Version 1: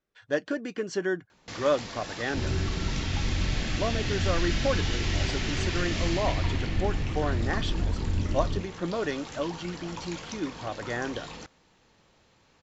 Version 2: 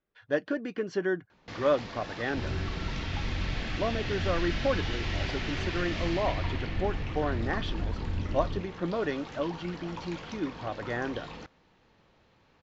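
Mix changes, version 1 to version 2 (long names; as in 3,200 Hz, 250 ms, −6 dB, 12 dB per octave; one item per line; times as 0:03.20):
second sound −4.5 dB
master: add high-frequency loss of the air 170 metres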